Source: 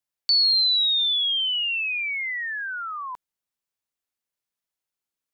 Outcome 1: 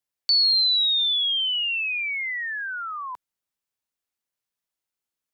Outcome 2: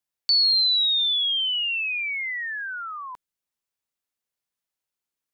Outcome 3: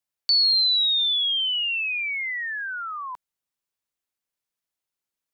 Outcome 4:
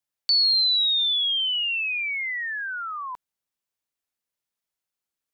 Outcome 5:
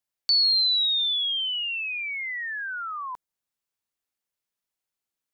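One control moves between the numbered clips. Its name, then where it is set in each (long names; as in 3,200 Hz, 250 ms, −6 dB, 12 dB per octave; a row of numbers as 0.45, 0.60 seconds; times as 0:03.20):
dynamic equaliser, frequency: 130, 840, 330, 9,100, 2,600 Hertz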